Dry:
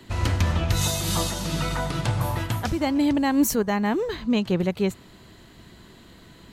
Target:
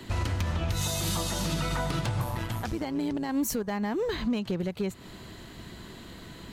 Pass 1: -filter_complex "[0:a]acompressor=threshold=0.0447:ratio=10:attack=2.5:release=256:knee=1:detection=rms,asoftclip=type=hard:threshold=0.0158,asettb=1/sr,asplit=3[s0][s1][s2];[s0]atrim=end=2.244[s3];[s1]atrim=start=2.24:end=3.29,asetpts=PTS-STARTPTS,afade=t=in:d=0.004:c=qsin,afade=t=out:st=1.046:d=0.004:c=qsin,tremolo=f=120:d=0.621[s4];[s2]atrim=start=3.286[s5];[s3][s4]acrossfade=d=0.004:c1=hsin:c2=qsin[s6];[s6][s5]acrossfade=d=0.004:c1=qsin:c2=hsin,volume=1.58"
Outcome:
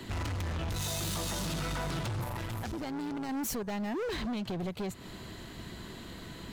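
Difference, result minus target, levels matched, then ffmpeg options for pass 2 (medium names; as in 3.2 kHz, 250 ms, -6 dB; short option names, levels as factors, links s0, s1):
hard clipper: distortion +17 dB
-filter_complex "[0:a]acompressor=threshold=0.0447:ratio=10:attack=2.5:release=256:knee=1:detection=rms,asoftclip=type=hard:threshold=0.0501,asettb=1/sr,asplit=3[s0][s1][s2];[s0]atrim=end=2.244[s3];[s1]atrim=start=2.24:end=3.29,asetpts=PTS-STARTPTS,afade=t=in:d=0.004:c=qsin,afade=t=out:st=1.046:d=0.004:c=qsin,tremolo=f=120:d=0.621[s4];[s2]atrim=start=3.286[s5];[s3][s4]acrossfade=d=0.004:c1=hsin:c2=qsin[s6];[s6][s5]acrossfade=d=0.004:c1=qsin:c2=hsin,volume=1.58"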